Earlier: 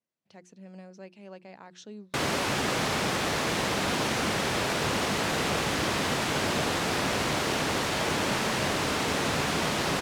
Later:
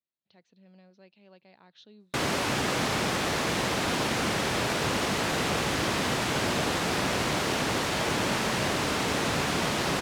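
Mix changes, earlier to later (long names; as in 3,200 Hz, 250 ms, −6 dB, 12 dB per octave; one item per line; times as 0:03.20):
speech: add transistor ladder low-pass 4,400 Hz, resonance 60%
master: remove mains-hum notches 60/120/180/240/300/360 Hz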